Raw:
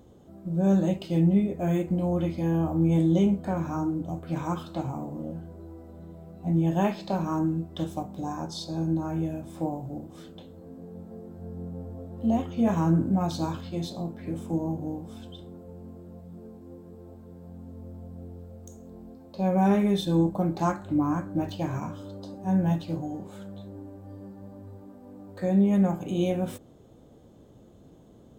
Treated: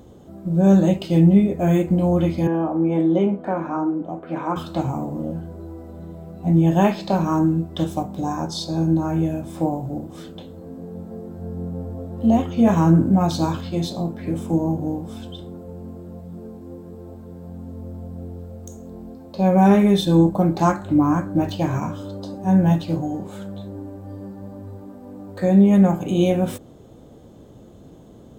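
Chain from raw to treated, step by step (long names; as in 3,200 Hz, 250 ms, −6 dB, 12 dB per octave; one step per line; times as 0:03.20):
0:02.47–0:04.56: three-way crossover with the lows and the highs turned down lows −23 dB, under 220 Hz, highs −19 dB, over 2,600 Hz
level +8 dB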